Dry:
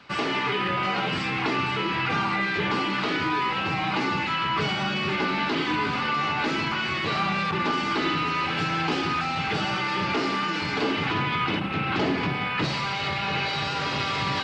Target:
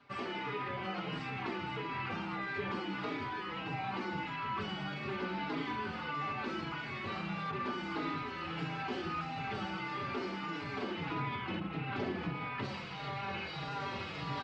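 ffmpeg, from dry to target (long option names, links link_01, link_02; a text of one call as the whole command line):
ffmpeg -i in.wav -filter_complex "[0:a]highshelf=frequency=2600:gain=-9.5,asplit=2[link_01][link_02];[link_02]adelay=4.5,afreqshift=-1.6[link_03];[link_01][link_03]amix=inputs=2:normalize=1,volume=-7.5dB" out.wav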